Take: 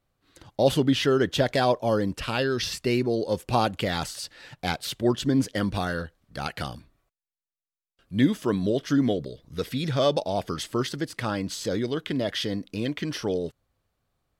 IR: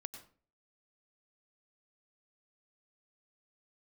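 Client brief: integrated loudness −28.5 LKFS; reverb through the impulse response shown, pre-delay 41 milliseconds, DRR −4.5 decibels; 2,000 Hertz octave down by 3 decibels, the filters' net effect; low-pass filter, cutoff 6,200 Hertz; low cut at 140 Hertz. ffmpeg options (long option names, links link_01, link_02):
-filter_complex "[0:a]highpass=140,lowpass=6200,equalizer=frequency=2000:width_type=o:gain=-4,asplit=2[link_01][link_02];[1:a]atrim=start_sample=2205,adelay=41[link_03];[link_02][link_03]afir=irnorm=-1:irlink=0,volume=8dB[link_04];[link_01][link_04]amix=inputs=2:normalize=0,volume=-7dB"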